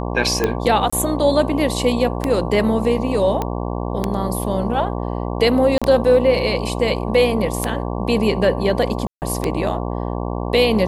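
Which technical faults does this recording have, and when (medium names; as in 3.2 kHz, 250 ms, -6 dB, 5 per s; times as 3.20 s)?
buzz 60 Hz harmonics 19 -24 dBFS
tick 33 1/3 rpm -5 dBFS
0.90–0.93 s: dropout 25 ms
3.42 s: pop -9 dBFS
5.78–5.82 s: dropout 36 ms
9.07–9.22 s: dropout 149 ms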